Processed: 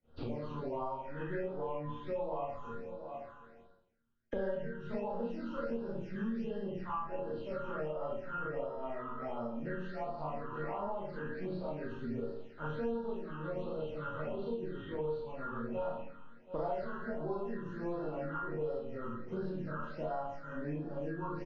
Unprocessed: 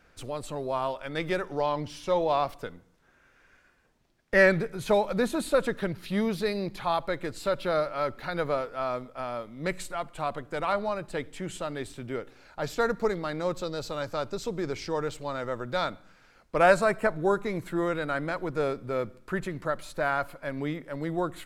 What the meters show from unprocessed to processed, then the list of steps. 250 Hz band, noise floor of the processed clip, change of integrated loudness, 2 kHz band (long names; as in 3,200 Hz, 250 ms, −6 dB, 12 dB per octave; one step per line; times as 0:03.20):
−7.5 dB, −56 dBFS, −10.5 dB, −16.5 dB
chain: hearing-aid frequency compression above 1,300 Hz 1.5 to 1
single-tap delay 724 ms −23.5 dB
dynamic equaliser 940 Hz, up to +7 dB, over −45 dBFS, Q 3.8
downward expander −47 dBFS
high-shelf EQ 2,200 Hz −11.5 dB
resonators tuned to a chord D#2 minor, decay 0.3 s
four-comb reverb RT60 0.72 s, combs from 27 ms, DRR −9 dB
all-pass phaser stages 8, 1.4 Hz, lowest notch 640–2,200 Hz
multiband upward and downward compressor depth 100%
level −6 dB